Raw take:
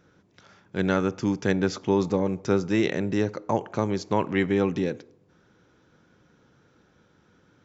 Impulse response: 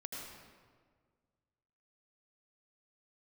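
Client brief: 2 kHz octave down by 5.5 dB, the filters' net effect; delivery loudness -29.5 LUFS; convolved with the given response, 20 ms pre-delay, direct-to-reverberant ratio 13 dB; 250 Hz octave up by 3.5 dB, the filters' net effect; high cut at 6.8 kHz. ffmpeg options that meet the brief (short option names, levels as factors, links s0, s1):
-filter_complex "[0:a]lowpass=6800,equalizer=f=250:t=o:g=5,equalizer=f=2000:t=o:g=-7,asplit=2[s0][s1];[1:a]atrim=start_sample=2205,adelay=20[s2];[s1][s2]afir=irnorm=-1:irlink=0,volume=0.251[s3];[s0][s3]amix=inputs=2:normalize=0,volume=0.473"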